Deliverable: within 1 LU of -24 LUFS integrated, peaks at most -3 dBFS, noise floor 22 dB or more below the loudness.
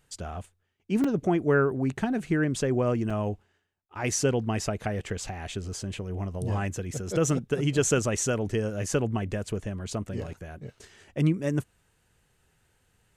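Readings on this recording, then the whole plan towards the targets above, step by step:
dropouts 2; longest dropout 3.8 ms; loudness -28.5 LUFS; peak level -10.0 dBFS; loudness target -24.0 LUFS
-> interpolate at 1.04/3.10 s, 3.8 ms; trim +4.5 dB

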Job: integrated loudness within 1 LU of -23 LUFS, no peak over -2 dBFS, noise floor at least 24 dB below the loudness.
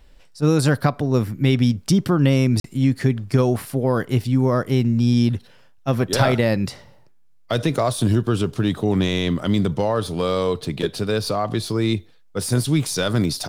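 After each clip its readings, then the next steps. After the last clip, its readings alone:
dropouts 1; longest dropout 43 ms; loudness -20.5 LUFS; peak level -5.0 dBFS; loudness target -23.0 LUFS
-> interpolate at 2.60 s, 43 ms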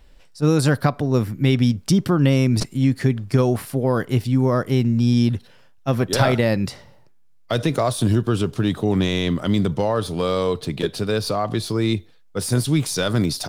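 dropouts 0; loudness -20.5 LUFS; peak level -5.0 dBFS; loudness target -23.0 LUFS
-> trim -2.5 dB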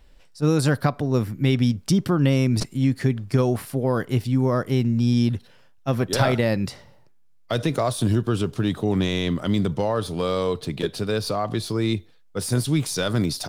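loudness -23.0 LUFS; peak level -7.5 dBFS; noise floor -52 dBFS

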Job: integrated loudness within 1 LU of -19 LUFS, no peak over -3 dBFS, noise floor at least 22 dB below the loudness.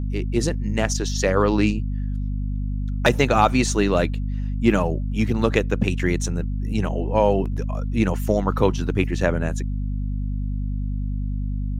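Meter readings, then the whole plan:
hum 50 Hz; highest harmonic 250 Hz; hum level -22 dBFS; loudness -23.0 LUFS; peak level -3.0 dBFS; loudness target -19.0 LUFS
-> de-hum 50 Hz, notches 5; trim +4 dB; peak limiter -3 dBFS

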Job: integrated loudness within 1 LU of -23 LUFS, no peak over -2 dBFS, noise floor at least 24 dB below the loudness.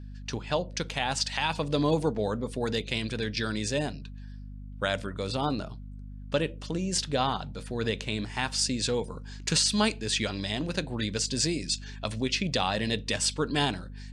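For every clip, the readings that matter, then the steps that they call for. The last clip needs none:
hum 50 Hz; highest harmonic 250 Hz; hum level -39 dBFS; loudness -29.0 LUFS; peak level -12.5 dBFS; loudness target -23.0 LUFS
-> de-hum 50 Hz, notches 5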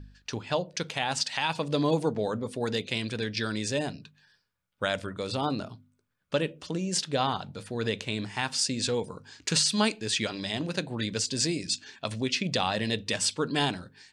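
hum not found; loudness -29.5 LUFS; peak level -12.5 dBFS; loudness target -23.0 LUFS
-> trim +6.5 dB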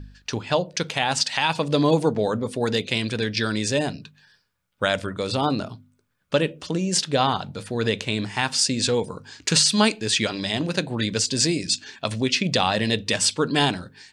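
loudness -23.0 LUFS; peak level -6.0 dBFS; noise floor -68 dBFS

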